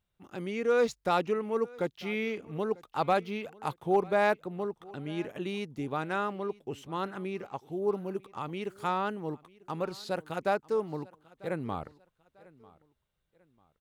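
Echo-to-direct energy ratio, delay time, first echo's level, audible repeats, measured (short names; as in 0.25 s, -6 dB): -22.5 dB, 0.945 s, -23.0 dB, 2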